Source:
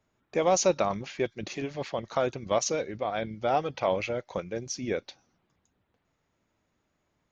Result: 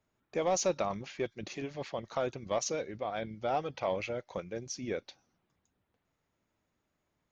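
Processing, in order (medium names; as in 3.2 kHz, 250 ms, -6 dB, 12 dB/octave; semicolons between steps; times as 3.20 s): saturation -14 dBFS, distortion -22 dB; trim -5 dB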